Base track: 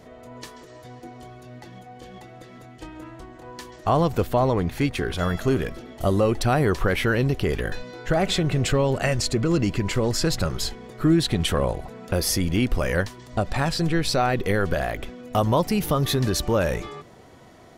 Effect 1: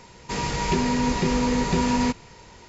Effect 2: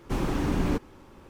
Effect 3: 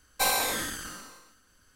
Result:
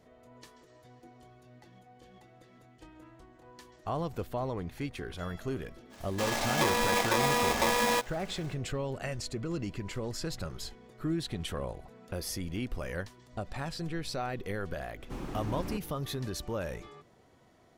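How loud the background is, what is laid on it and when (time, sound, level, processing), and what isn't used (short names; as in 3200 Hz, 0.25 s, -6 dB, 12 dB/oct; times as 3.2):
base track -13.5 dB
5.89 add 1 -5.5 dB, fades 0.05 s + polarity switched at an audio rate 730 Hz
15 add 2 -11.5 dB
not used: 3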